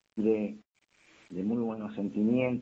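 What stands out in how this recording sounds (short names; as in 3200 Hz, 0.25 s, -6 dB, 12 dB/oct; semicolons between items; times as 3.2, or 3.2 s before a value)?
a quantiser's noise floor 10-bit, dither none; tremolo triangle 1 Hz, depth 65%; AAC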